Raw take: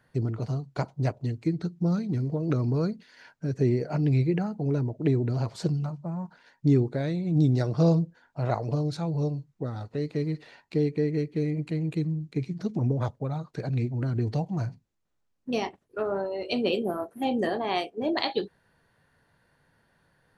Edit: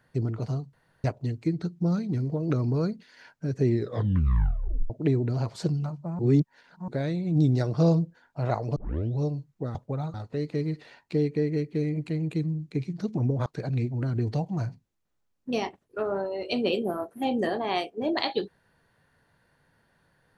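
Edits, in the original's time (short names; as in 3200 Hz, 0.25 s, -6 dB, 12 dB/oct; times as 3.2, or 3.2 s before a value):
0.73–1.04 room tone
3.68 tape stop 1.22 s
6.19–6.88 reverse
8.76 tape start 0.44 s
13.07–13.46 move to 9.75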